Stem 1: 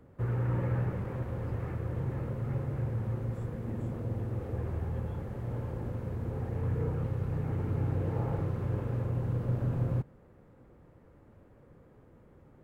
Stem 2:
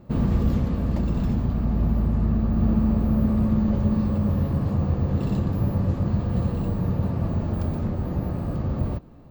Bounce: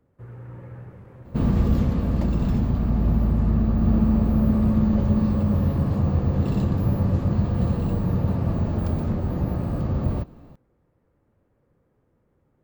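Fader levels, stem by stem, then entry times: -9.5 dB, +1.5 dB; 0.00 s, 1.25 s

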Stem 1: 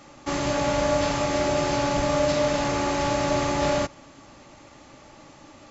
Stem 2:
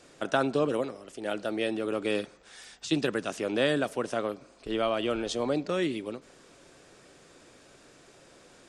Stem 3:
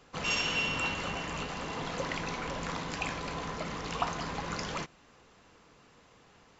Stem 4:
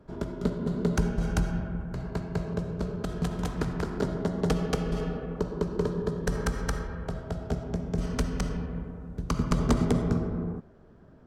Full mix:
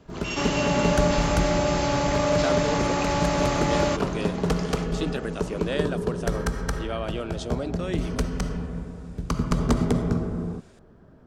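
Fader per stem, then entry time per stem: -0.5 dB, -3.5 dB, -2.5 dB, +2.0 dB; 0.10 s, 2.10 s, 0.00 s, 0.00 s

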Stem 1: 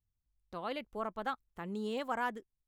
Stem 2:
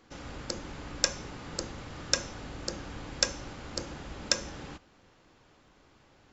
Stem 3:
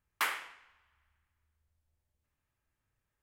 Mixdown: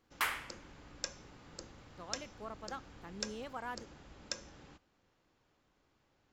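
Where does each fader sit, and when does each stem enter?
-8.0 dB, -13.5 dB, -2.0 dB; 1.45 s, 0.00 s, 0.00 s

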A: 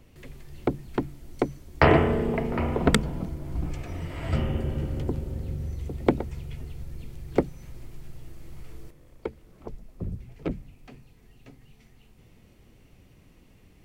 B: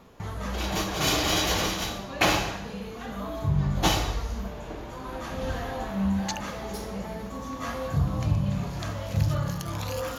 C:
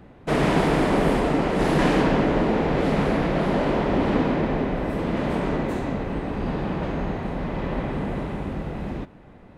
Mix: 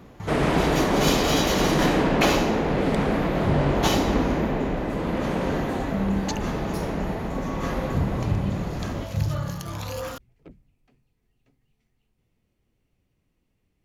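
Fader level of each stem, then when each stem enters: -17.0 dB, -0.5 dB, -1.5 dB; 0.00 s, 0.00 s, 0.00 s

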